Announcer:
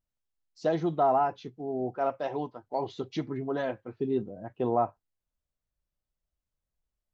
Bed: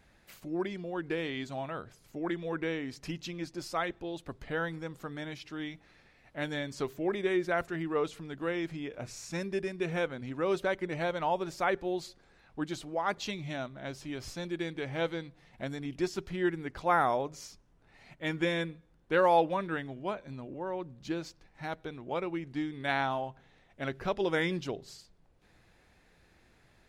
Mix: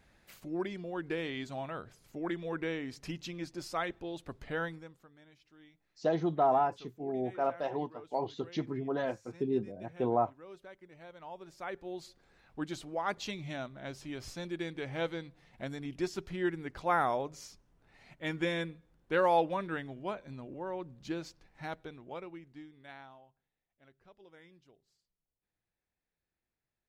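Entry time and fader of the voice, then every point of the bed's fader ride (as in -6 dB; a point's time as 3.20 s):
5.40 s, -2.5 dB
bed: 4.65 s -2 dB
5.11 s -20.5 dB
10.97 s -20.5 dB
12.37 s -2.5 dB
21.69 s -2.5 dB
23.52 s -28 dB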